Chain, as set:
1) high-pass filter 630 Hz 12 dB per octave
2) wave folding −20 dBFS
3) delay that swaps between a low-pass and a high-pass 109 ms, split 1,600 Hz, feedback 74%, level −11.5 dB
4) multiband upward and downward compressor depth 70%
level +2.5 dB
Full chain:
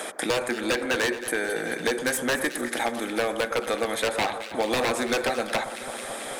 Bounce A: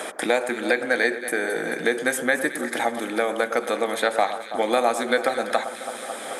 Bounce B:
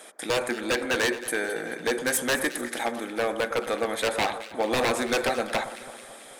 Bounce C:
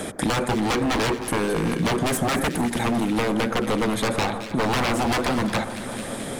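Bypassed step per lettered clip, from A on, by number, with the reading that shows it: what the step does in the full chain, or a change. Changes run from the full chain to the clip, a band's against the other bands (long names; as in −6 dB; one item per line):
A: 2, change in crest factor +3.0 dB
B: 4, change in crest factor −3.5 dB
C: 1, 125 Hz band +14.5 dB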